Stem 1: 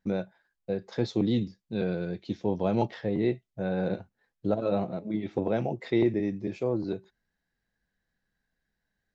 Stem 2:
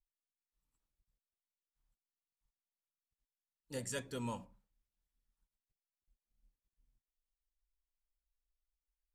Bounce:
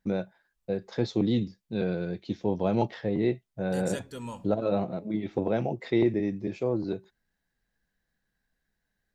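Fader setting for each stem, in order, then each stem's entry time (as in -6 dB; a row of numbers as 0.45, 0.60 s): +0.5, +2.0 dB; 0.00, 0.00 s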